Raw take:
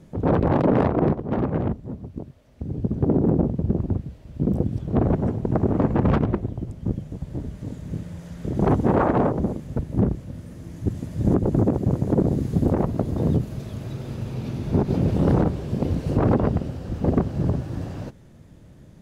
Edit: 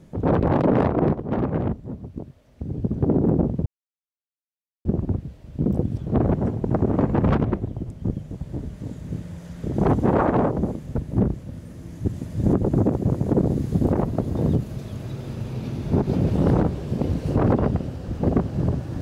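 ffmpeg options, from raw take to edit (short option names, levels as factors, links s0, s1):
-filter_complex "[0:a]asplit=2[s0][s1];[s0]atrim=end=3.66,asetpts=PTS-STARTPTS,afade=t=out:st=3.656:d=0.004:c=hsin,apad=pad_dur=1.19[s2];[s1]atrim=start=3.66,asetpts=PTS-STARTPTS,afade=t=in:d=0.004:c=hsin[s3];[s2][s3]concat=n=2:v=0:a=1"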